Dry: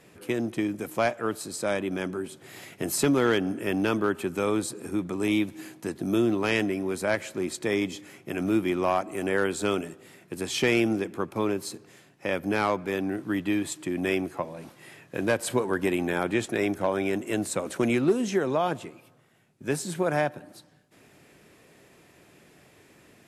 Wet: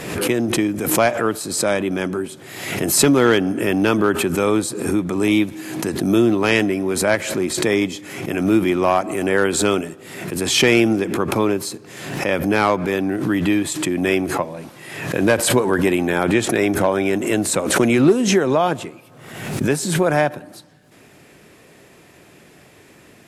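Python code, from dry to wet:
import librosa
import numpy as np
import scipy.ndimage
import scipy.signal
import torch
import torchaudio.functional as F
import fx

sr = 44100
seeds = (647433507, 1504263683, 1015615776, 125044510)

y = fx.pre_swell(x, sr, db_per_s=54.0)
y = y * 10.0 ** (8.0 / 20.0)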